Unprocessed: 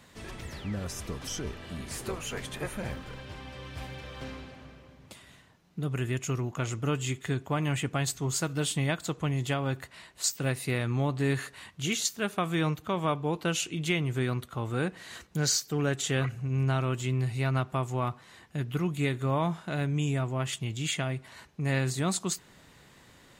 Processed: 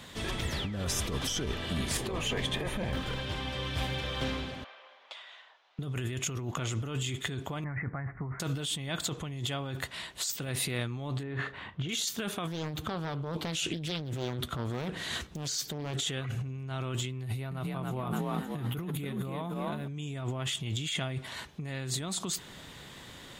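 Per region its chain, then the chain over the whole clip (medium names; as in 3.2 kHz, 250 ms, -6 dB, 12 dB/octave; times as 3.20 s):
1.97–2.93 s: treble shelf 5.1 kHz -11 dB + band-stop 1.4 kHz, Q 5.4
4.64–5.79 s: high-pass 650 Hz 24 dB/octave + distance through air 200 m
7.64–8.40 s: steep low-pass 2.1 kHz 96 dB/octave + peaking EQ 380 Hz -7 dB 1.6 oct
11.23–11.89 s: low-pass 1.8 kHz + doubling 39 ms -14 dB
12.47–16.03 s: bass shelf 350 Hz +5.5 dB + doubling 13 ms -13 dB + loudspeaker Doppler distortion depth 0.93 ms
17.23–19.88 s: FFT filter 670 Hz 0 dB, 7.7 kHz -8 dB, 11 kHz +7 dB + frequency-shifting echo 281 ms, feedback 34%, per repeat +43 Hz, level -4 dB
whole clip: peaking EQ 3.4 kHz +8 dB 0.34 oct; peak limiter -24 dBFS; compressor with a negative ratio -37 dBFS, ratio -1; trim +3 dB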